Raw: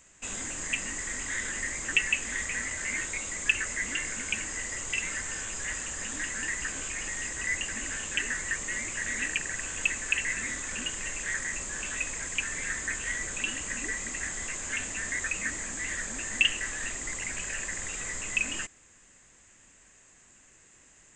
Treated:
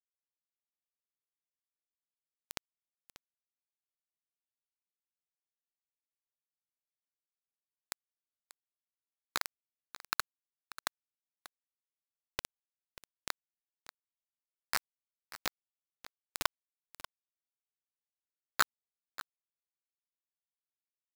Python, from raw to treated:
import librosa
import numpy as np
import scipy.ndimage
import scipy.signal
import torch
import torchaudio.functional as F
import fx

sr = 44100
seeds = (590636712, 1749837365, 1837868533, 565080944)

p1 = scipy.signal.medfilt(x, 15)
p2 = fx.peak_eq(p1, sr, hz=1500.0, db=13.0, octaves=0.21)
p3 = fx.hum_notches(p2, sr, base_hz=50, count=10)
p4 = fx.rider(p3, sr, range_db=10, speed_s=0.5)
p5 = p3 + (p4 * librosa.db_to_amplitude(0.0))
p6 = fx.wah_lfo(p5, sr, hz=1.3, low_hz=390.0, high_hz=1300.0, q=20.0)
p7 = fx.quant_companded(p6, sr, bits=2)
p8 = p7 + fx.echo_single(p7, sr, ms=588, db=-15.5, dry=0)
y = p8 * librosa.db_to_amplitude(10.0)